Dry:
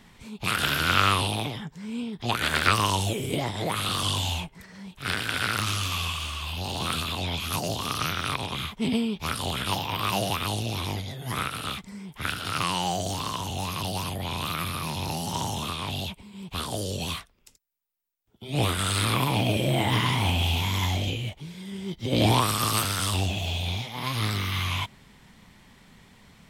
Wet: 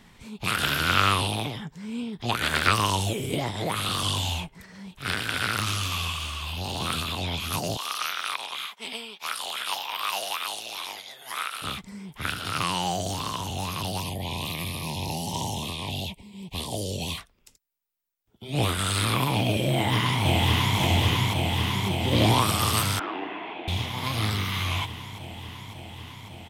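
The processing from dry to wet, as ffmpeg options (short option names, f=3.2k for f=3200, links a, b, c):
-filter_complex "[0:a]asettb=1/sr,asplit=3[a][b][c];[a]atrim=end=7.774[d];[b]atrim=start=7.77:end=11.62,asetpts=PTS-STARTPTS,afade=t=in:d=0.004:c=qsin,afade=t=out:st=3.846:d=0.004:c=qsin,highpass=840[e];[c]atrim=start=11.616[f];[d][e]acrossfade=d=0.004:c1=hsin:c2=qsin[g];[g][f]acrossfade=d=0.004:c1=qsin:c2=hsin,asettb=1/sr,asplit=3[h][i][j];[h]atrim=end=14.004[k];[i]atrim=start=14:end=17.18,asetpts=PTS-STARTPTS,afade=t=in:d=0.004:c=qsin,afade=t=out:st=3.176:d=0.004:c=qsin,asuperstop=centerf=1400:order=4:qfactor=1.5[l];[j]atrim=start=17.176[m];[k][l]acrossfade=d=0.004:c1=hsin:c2=qsin[n];[n][m]acrossfade=d=0.004:c1=qsin:c2=hsin,asplit=2[o][p];[p]afade=t=in:st=19.7:d=0.01,afade=t=out:st=20.78:d=0.01,aecho=0:1:550|1100|1650|2200|2750|3300|3850|4400|4950|5500|6050|6600:0.841395|0.673116|0.538493|0.430794|0.344635|0.275708|0.220567|0.176453|0.141163|0.11293|0.0903441|0.0722753[q];[o][q]amix=inputs=2:normalize=0,asettb=1/sr,asplit=3[r][s][t];[r]atrim=end=22.994[u];[s]atrim=start=22.99:end=23.68,asetpts=PTS-STARTPTS,afade=t=in:d=0.004:c=qsin,afade=t=out:st=0.686:d=0.004:c=qsin,highpass=f=310:w=0.5412,highpass=f=310:w=1.3066,equalizer=f=320:t=q:w=4:g=7,equalizer=f=560:t=q:w=4:g=-8,equalizer=f=1.6k:t=q:w=4:g=4,lowpass=f=2.2k:w=0.5412,lowpass=f=2.2k:w=1.3066[v];[t]atrim=start=23.676[w];[u][v]acrossfade=d=0.004:c1=hsin:c2=qsin[x];[x][w]acrossfade=d=0.004:c1=qsin:c2=hsin"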